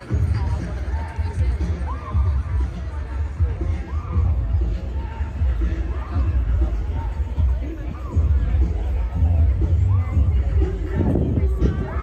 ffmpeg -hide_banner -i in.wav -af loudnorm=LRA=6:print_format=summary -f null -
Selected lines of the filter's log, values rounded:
Input Integrated:    -22.5 LUFS
Input True Peak:      -8.4 dBTP
Input LRA:             3.7 LU
Input Threshold:     -32.5 LUFS